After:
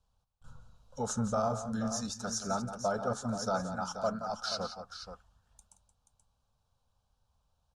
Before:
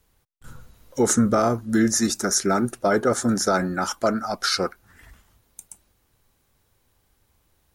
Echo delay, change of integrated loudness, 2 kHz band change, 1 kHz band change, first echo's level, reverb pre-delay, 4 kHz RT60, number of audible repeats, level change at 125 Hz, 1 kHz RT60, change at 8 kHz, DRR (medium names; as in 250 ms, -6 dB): 175 ms, -12.5 dB, -15.5 dB, -9.0 dB, -11.0 dB, no reverb, no reverb, 2, -9.5 dB, no reverb, -14.5 dB, no reverb